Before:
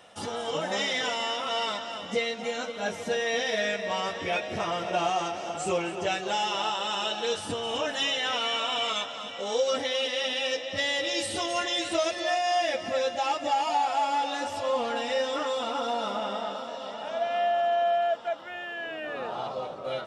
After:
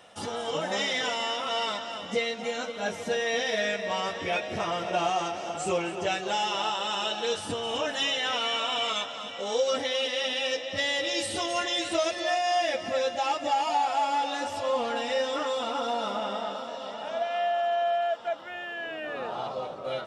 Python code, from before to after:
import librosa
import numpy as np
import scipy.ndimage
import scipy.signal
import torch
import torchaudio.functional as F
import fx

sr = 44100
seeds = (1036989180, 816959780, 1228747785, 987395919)

y = fx.low_shelf(x, sr, hz=300.0, db=-10.0, at=(17.22, 18.2))